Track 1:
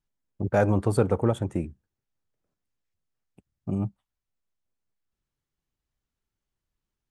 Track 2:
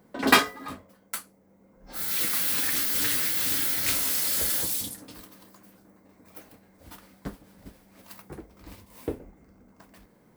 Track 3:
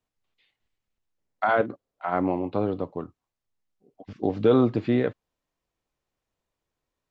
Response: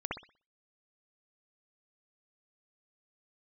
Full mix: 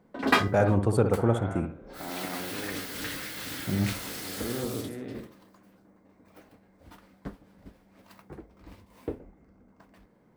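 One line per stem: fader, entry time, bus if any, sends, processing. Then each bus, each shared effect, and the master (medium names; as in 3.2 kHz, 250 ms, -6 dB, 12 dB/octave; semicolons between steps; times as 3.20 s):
-3.5 dB, 0.00 s, send -8 dB, none
-2.5 dB, 0.00 s, no send, low-pass 2.5 kHz 6 dB/octave
-13.5 dB, 0.00 s, send -5.5 dB, spectrogram pixelated in time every 400 ms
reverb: on, pre-delay 60 ms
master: none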